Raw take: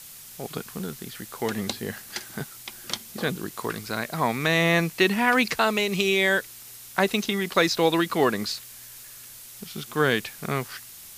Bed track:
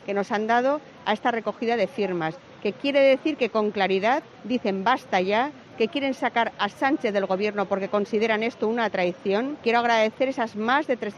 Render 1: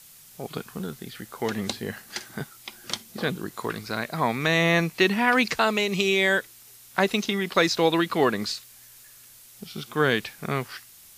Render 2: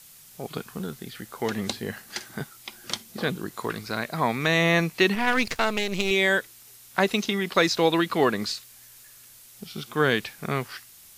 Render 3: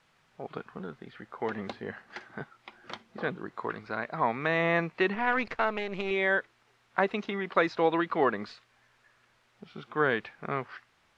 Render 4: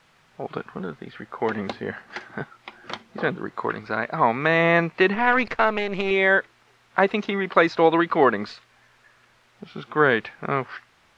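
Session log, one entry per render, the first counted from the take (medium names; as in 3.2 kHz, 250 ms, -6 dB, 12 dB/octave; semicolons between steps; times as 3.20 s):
noise print and reduce 6 dB
5.15–6.11 s: partial rectifier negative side -12 dB
low-pass 1.6 kHz 12 dB/octave; bass shelf 350 Hz -11 dB
trim +8 dB; peak limiter -2 dBFS, peak gain reduction 1.5 dB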